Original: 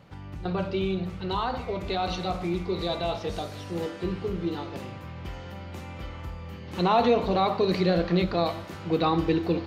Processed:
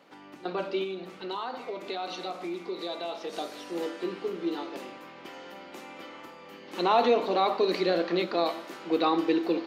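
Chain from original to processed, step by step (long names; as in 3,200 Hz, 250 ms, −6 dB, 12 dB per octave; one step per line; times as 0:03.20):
Chebyshev high-pass filter 280 Hz, order 3
0:00.83–0:03.33: downward compressor 2 to 1, threshold −35 dBFS, peak gain reduction 6 dB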